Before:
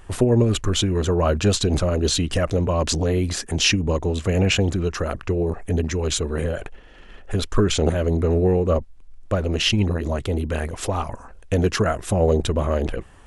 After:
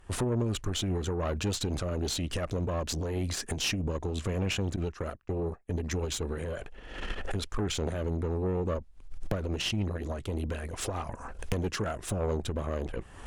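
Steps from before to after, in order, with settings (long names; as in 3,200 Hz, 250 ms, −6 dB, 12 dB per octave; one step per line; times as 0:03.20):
camcorder AGC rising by 48 dB per second
0:04.76–0:05.83: noise gate −22 dBFS, range −26 dB
tube saturation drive 14 dB, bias 0.55
level −8.5 dB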